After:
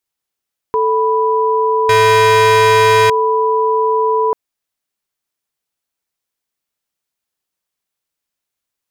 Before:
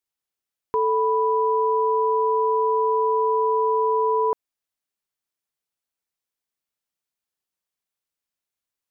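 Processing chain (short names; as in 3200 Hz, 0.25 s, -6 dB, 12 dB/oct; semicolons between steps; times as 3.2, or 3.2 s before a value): 1.89–3.1 sample leveller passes 5; gain +6.5 dB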